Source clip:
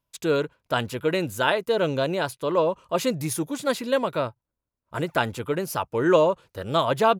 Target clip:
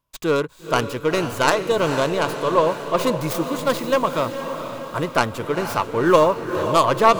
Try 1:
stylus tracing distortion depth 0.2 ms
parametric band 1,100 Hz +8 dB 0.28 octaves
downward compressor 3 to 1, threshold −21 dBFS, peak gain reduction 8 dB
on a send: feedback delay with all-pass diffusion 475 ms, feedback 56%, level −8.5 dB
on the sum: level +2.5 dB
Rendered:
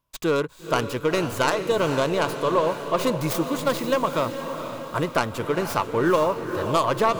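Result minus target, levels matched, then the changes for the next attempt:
downward compressor: peak gain reduction +8 dB
remove: downward compressor 3 to 1, threshold −21 dBFS, peak gain reduction 8 dB

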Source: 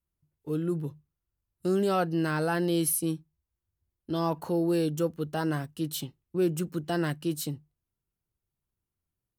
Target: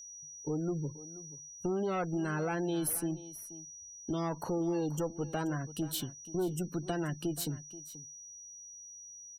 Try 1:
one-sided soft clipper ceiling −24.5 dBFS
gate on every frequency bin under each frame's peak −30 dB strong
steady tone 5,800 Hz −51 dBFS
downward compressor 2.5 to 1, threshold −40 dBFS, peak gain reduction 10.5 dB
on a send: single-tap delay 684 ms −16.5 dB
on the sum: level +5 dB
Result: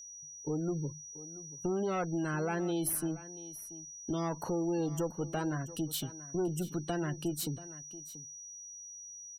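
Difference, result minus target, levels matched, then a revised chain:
echo 202 ms late
one-sided soft clipper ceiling −24.5 dBFS
gate on every frequency bin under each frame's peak −30 dB strong
steady tone 5,800 Hz −51 dBFS
downward compressor 2.5 to 1, threshold −40 dBFS, peak gain reduction 10.5 dB
on a send: single-tap delay 482 ms −16.5 dB
on the sum: level +5 dB

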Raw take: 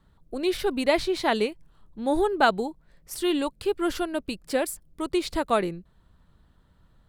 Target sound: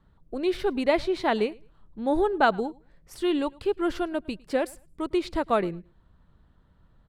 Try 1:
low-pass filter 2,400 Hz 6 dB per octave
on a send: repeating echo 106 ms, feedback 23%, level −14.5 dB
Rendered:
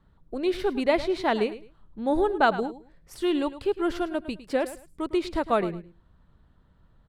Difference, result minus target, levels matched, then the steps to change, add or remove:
echo-to-direct +10.5 dB
change: repeating echo 106 ms, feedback 23%, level −25 dB

